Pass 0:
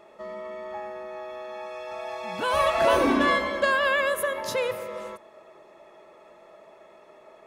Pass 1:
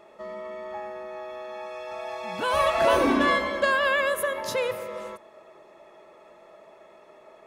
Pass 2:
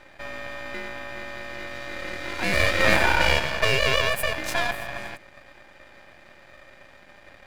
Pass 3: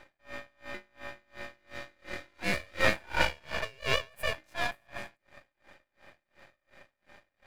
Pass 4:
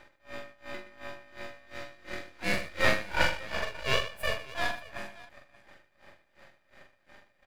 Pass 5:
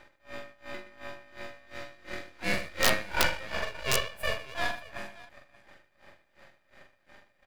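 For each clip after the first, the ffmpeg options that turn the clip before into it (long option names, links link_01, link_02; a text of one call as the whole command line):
ffmpeg -i in.wav -af anull out.wav
ffmpeg -i in.wav -af "aeval=exprs='val(0)*sin(2*PI*1200*n/s)':channel_layout=same,aeval=exprs='max(val(0),0)':channel_layout=same,volume=8dB" out.wav
ffmpeg -i in.wav -af "aeval=exprs='val(0)*pow(10,-32*(0.5-0.5*cos(2*PI*2.8*n/s))/20)':channel_layout=same,volume=-3.5dB" out.wav
ffmpeg -i in.wav -af "aecho=1:1:44|121|581:0.562|0.2|0.112" out.wav
ffmpeg -i in.wav -af "aeval=exprs='(mod(3.35*val(0)+1,2)-1)/3.35':channel_layout=same" out.wav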